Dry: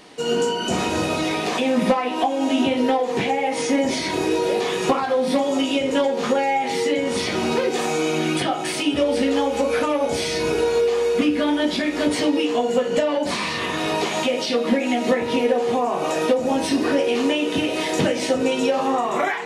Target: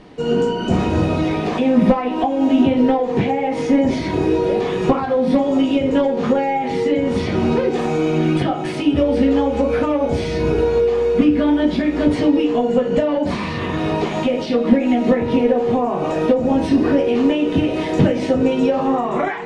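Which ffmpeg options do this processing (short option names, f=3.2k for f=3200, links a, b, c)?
-af "aemphasis=mode=reproduction:type=riaa"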